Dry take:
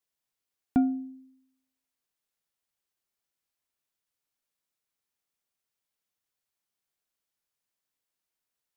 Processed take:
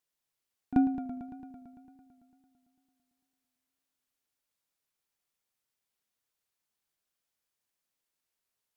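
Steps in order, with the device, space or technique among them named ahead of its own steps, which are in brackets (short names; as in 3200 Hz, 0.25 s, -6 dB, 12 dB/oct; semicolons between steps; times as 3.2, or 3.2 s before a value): pre-echo 36 ms -15.5 dB; multi-head tape echo (multi-head echo 0.112 s, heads first and second, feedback 65%, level -14.5 dB; wow and flutter)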